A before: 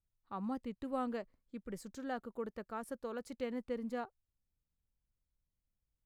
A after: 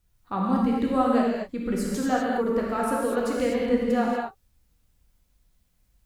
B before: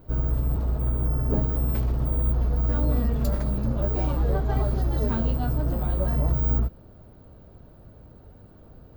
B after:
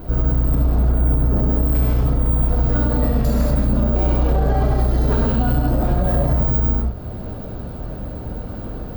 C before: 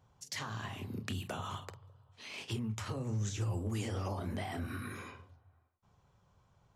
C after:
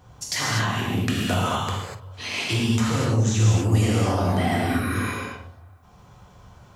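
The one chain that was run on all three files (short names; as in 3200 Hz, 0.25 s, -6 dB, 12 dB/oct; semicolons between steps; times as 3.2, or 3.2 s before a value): compressor 1.5:1, threshold -46 dBFS; non-linear reverb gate 0.27 s flat, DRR -4 dB; maximiser +23 dB; gain -8 dB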